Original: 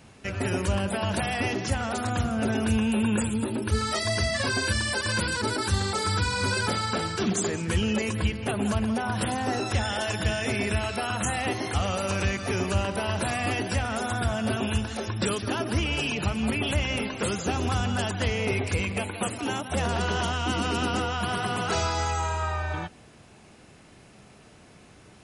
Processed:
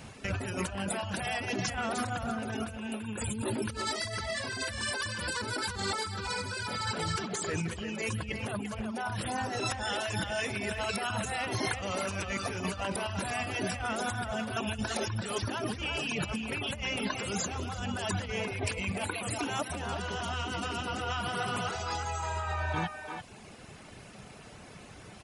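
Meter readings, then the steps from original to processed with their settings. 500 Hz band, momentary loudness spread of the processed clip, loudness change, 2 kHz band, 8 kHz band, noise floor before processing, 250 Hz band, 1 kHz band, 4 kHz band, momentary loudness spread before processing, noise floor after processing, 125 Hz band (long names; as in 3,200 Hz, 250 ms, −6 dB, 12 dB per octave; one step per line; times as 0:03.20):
−6.5 dB, 5 LU, −6.5 dB, −5.0 dB, −4.5 dB, −52 dBFS, −8.5 dB, −5.0 dB, −5.0 dB, 3 LU, −50 dBFS, −8.5 dB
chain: reverb reduction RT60 0.85 s
parametric band 330 Hz −3.5 dB 0.63 octaves
compressor whose output falls as the input rises −35 dBFS, ratio −1
far-end echo of a speakerphone 340 ms, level −6 dB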